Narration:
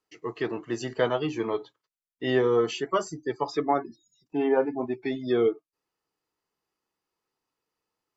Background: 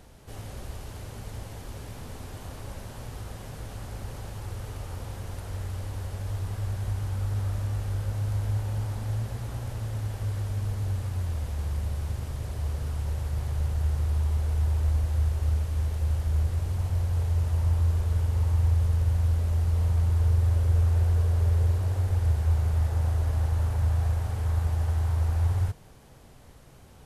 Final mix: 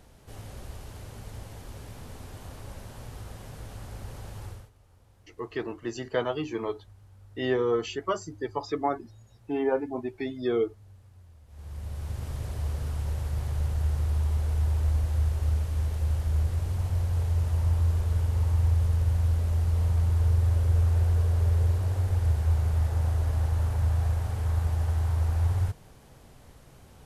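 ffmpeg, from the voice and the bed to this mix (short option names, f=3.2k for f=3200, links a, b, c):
-filter_complex "[0:a]adelay=5150,volume=-3dB[a];[1:a]volume=19.5dB,afade=t=out:st=4.45:d=0.25:silence=0.1,afade=t=in:st=11.47:d=0.86:silence=0.0749894[b];[a][b]amix=inputs=2:normalize=0"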